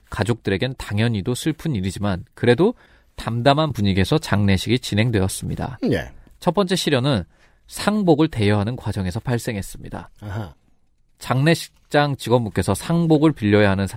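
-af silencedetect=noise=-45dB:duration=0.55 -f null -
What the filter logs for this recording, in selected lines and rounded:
silence_start: 10.53
silence_end: 11.18 | silence_duration: 0.66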